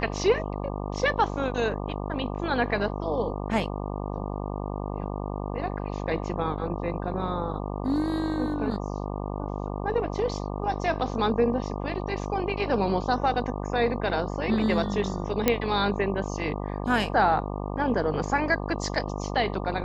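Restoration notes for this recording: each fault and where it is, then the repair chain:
buzz 50 Hz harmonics 24 -32 dBFS
15.48 s: pop -6 dBFS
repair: de-click; de-hum 50 Hz, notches 24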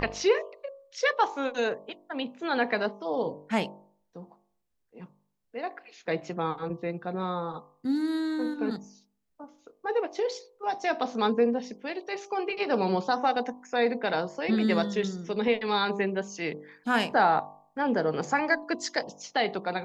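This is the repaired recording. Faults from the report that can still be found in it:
nothing left

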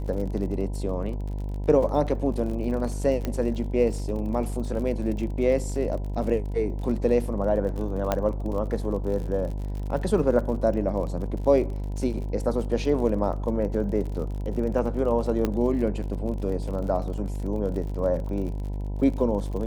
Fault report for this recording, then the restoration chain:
buzz 50 Hz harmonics 20 -30 dBFS
crackle 46 per s -34 dBFS
3.25 s: pop -15 dBFS
8.12 s: pop -10 dBFS
15.45 s: pop -12 dBFS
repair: de-click; de-hum 50 Hz, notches 20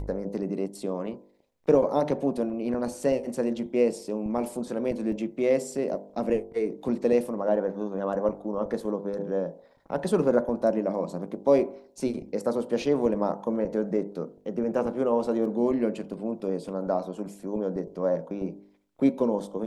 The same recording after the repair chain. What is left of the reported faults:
15.45 s: pop

